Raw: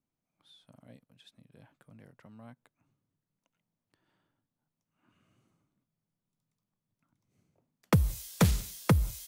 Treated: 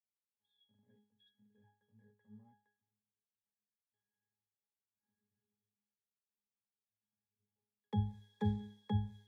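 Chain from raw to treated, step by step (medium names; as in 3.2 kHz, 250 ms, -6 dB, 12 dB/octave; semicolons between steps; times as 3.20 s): companding laws mixed up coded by mu; bass shelf 260 Hz -7 dB; in parallel at -11 dB: word length cut 8-bit, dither none; on the sum: pitch-class resonator G#, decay 0.42 s; three bands expanded up and down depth 40%; trim +1.5 dB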